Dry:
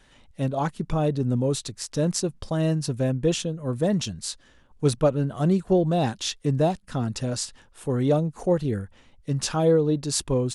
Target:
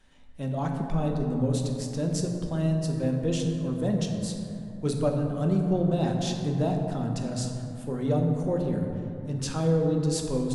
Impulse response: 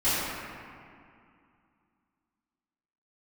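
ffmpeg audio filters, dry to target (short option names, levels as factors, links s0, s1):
-filter_complex "[0:a]asplit=2[s0][s1];[1:a]atrim=start_sample=2205,asetrate=36162,aresample=44100,lowshelf=f=280:g=8[s2];[s1][s2]afir=irnorm=-1:irlink=0,volume=0.141[s3];[s0][s3]amix=inputs=2:normalize=0,volume=0.376"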